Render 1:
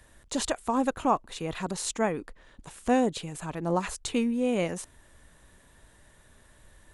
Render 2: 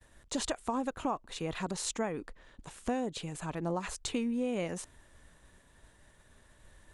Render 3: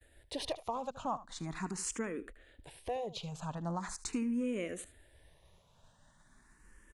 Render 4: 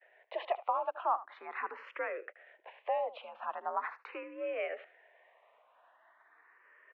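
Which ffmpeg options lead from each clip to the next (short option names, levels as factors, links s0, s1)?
-af "agate=range=0.0224:threshold=0.002:ratio=3:detection=peak,lowpass=9900,acompressor=threshold=0.0447:ratio=6,volume=0.794"
-filter_complex "[0:a]asplit=2[s0][s1];[s1]aeval=exprs='0.119*sin(PI/2*1.41*val(0)/0.119)':c=same,volume=0.398[s2];[s0][s2]amix=inputs=2:normalize=0,aecho=1:1:76:0.158,asplit=2[s3][s4];[s4]afreqshift=0.41[s5];[s3][s5]amix=inputs=2:normalize=1,volume=0.501"
-af "highpass=f=470:t=q:w=0.5412,highpass=f=470:t=q:w=1.307,lowpass=f=2500:t=q:w=0.5176,lowpass=f=2500:t=q:w=0.7071,lowpass=f=2500:t=q:w=1.932,afreqshift=65,volume=2"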